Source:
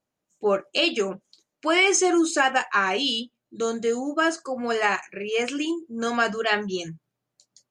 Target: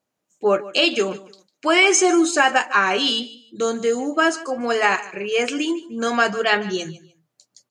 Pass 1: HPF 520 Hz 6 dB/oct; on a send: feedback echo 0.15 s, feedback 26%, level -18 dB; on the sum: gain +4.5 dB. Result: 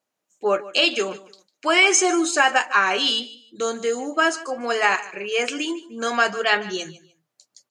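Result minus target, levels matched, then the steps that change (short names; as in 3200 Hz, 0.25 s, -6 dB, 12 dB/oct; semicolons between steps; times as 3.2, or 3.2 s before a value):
125 Hz band -6.0 dB
change: HPF 140 Hz 6 dB/oct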